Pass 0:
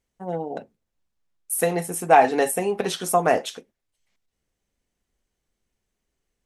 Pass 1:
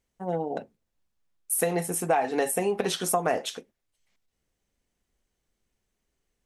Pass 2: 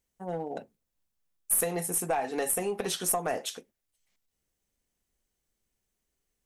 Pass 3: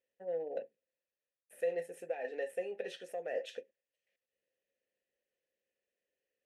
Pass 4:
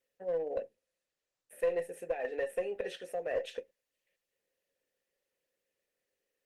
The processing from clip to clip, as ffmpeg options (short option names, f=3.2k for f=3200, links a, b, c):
-af "acompressor=threshold=-21dB:ratio=6"
-filter_complex "[0:a]highshelf=f=7.1k:g=10.5,asplit=2[a][b];[b]aeval=exprs='clip(val(0),-1,0.0708)':c=same,volume=-5.5dB[c];[a][c]amix=inputs=2:normalize=0,volume=-8.5dB"
-filter_complex "[0:a]areverse,acompressor=threshold=-35dB:ratio=6,areverse,asplit=3[a][b][c];[a]bandpass=f=530:t=q:w=8,volume=0dB[d];[b]bandpass=f=1.84k:t=q:w=8,volume=-6dB[e];[c]bandpass=f=2.48k:t=q:w=8,volume=-9dB[f];[d][e][f]amix=inputs=3:normalize=0,volume=8.5dB"
-filter_complex "[0:a]asplit=2[a][b];[b]aeval=exprs='clip(val(0),-1,0.0168)':c=same,volume=-4dB[c];[a][c]amix=inputs=2:normalize=0" -ar 48000 -c:a libopus -b:a 24k